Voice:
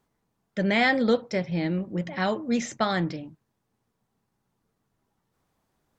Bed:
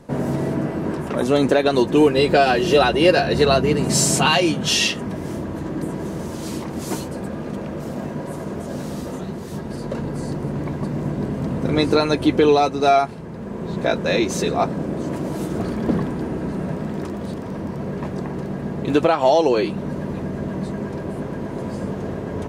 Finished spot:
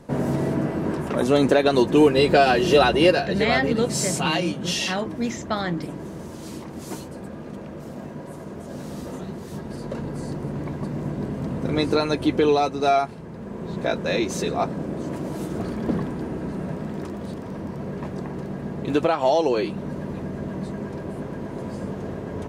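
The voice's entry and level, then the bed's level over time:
2.70 s, -1.0 dB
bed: 3.04 s -1 dB
3.26 s -7.5 dB
8.54 s -7.5 dB
9.12 s -4 dB

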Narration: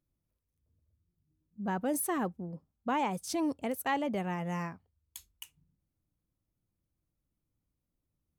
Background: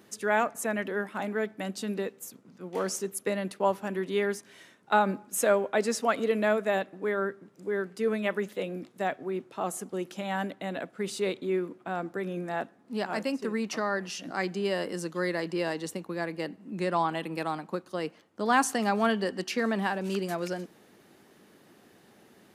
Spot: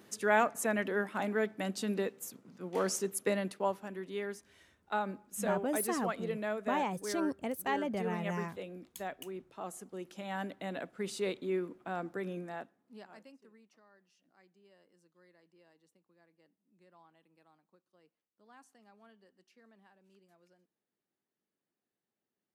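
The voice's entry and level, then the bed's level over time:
3.80 s, -2.5 dB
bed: 3.34 s -1.5 dB
3.91 s -10.5 dB
9.91 s -10.5 dB
10.62 s -5 dB
12.30 s -5 dB
13.76 s -35 dB

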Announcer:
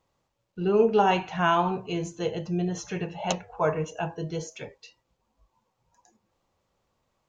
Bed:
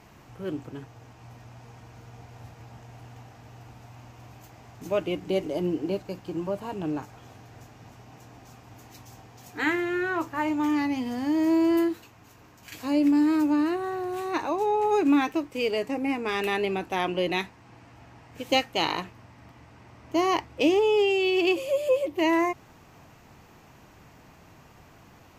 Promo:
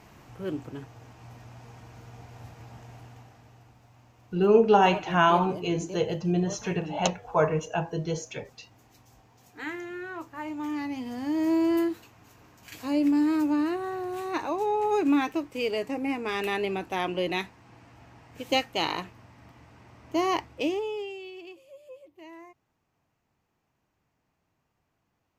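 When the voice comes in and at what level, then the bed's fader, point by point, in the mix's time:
3.75 s, +2.0 dB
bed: 2.91 s 0 dB
3.82 s -10 dB
10.27 s -10 dB
11.50 s -2 dB
20.45 s -2 dB
21.57 s -24 dB

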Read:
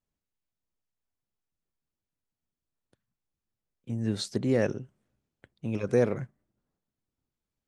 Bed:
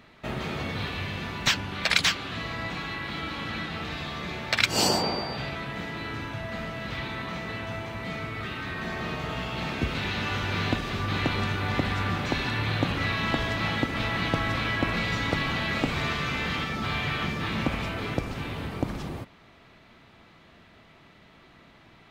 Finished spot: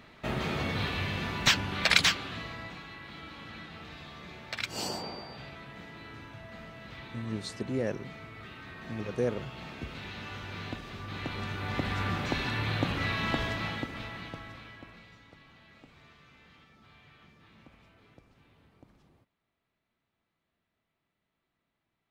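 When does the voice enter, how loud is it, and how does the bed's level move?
3.25 s, -6.0 dB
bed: 1.98 s 0 dB
2.85 s -12 dB
11.05 s -12 dB
12.01 s -3.5 dB
13.44 s -3.5 dB
15.27 s -29 dB

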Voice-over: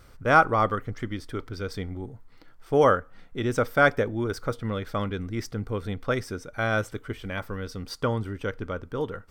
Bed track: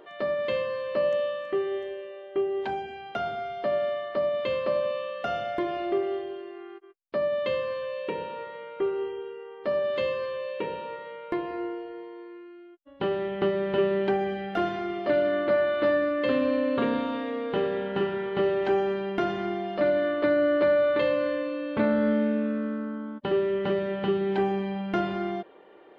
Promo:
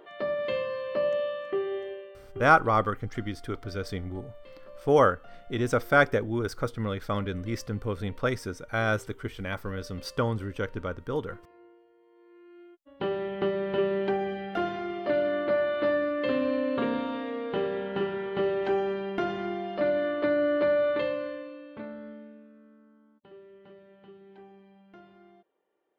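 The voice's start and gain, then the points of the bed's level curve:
2.15 s, -1.0 dB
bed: 1.92 s -2 dB
2.80 s -22.5 dB
11.98 s -22.5 dB
12.61 s -2.5 dB
20.90 s -2.5 dB
22.49 s -25.5 dB

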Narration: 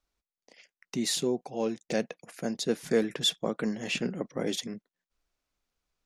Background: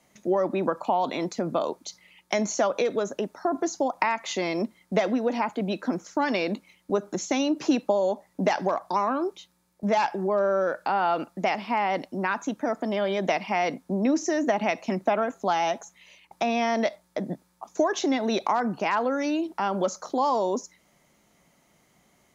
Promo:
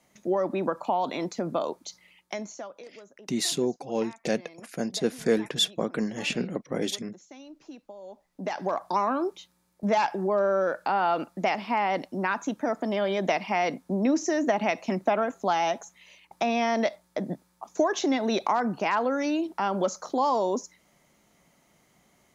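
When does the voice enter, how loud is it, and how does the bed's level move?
2.35 s, +2.0 dB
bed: 2.09 s -2 dB
2.87 s -22 dB
7.95 s -22 dB
8.79 s -0.5 dB

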